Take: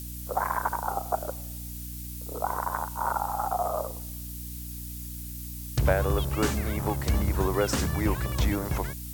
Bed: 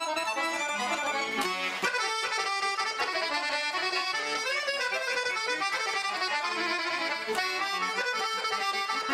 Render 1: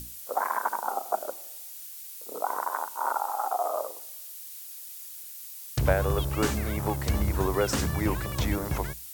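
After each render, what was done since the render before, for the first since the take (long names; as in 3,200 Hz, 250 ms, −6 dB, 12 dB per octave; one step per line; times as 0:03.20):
mains-hum notches 60/120/180/240/300/360 Hz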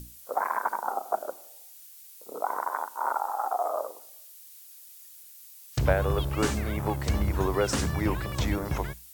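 noise reduction from a noise print 7 dB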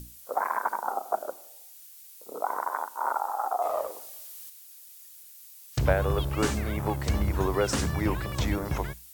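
0:03.62–0:04.50: mu-law and A-law mismatch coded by mu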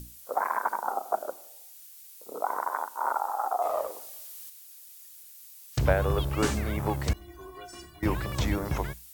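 0:07.13–0:08.03: stiff-string resonator 350 Hz, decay 0.26 s, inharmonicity 0.008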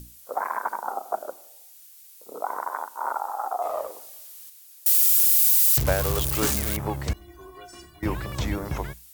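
0:04.86–0:06.77: spike at every zero crossing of −16 dBFS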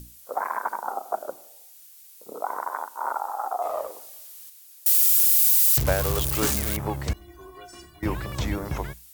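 0:01.29–0:02.33: low-shelf EQ 250 Hz +11 dB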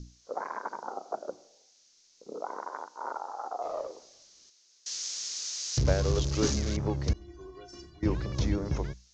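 Butterworth low-pass 6,600 Hz 72 dB per octave
flat-topped bell 1,500 Hz −8.5 dB 2.7 octaves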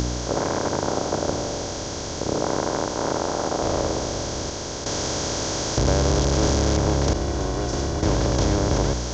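compressor on every frequency bin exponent 0.2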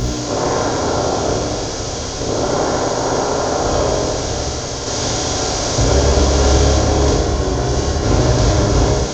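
flutter between parallel walls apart 10.8 metres, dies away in 0.51 s
reverb whose tail is shaped and stops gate 270 ms falling, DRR −5 dB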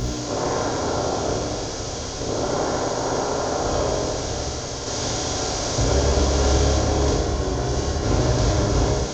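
level −6 dB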